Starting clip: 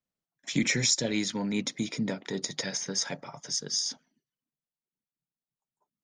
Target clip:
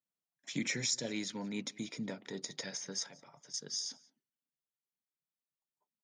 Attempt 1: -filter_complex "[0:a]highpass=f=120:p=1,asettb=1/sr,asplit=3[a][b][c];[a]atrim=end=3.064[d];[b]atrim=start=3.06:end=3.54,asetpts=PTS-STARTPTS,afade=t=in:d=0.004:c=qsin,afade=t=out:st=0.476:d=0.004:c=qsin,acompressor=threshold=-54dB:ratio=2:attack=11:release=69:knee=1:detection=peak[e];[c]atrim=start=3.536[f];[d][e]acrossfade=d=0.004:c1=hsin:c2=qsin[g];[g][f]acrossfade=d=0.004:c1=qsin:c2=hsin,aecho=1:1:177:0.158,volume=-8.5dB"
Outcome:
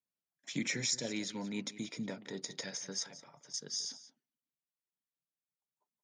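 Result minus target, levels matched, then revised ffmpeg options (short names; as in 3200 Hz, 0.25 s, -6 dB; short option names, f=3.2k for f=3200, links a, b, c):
echo-to-direct +9 dB
-filter_complex "[0:a]highpass=f=120:p=1,asettb=1/sr,asplit=3[a][b][c];[a]atrim=end=3.064[d];[b]atrim=start=3.06:end=3.54,asetpts=PTS-STARTPTS,afade=t=in:d=0.004:c=qsin,afade=t=out:st=0.476:d=0.004:c=qsin,acompressor=threshold=-54dB:ratio=2:attack=11:release=69:knee=1:detection=peak[e];[c]atrim=start=3.536[f];[d][e]acrossfade=d=0.004:c1=hsin:c2=qsin[g];[g][f]acrossfade=d=0.004:c1=qsin:c2=hsin,aecho=1:1:177:0.0562,volume=-8.5dB"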